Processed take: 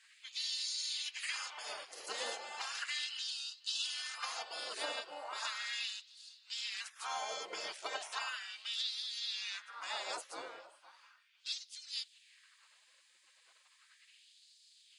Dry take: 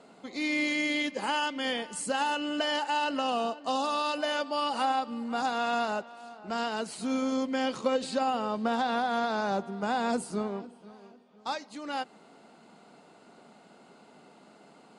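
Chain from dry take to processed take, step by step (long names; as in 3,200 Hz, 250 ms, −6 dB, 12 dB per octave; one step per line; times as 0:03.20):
gate on every frequency bin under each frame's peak −20 dB weak
auto-filter high-pass sine 0.36 Hz 440–4,300 Hz
level +1 dB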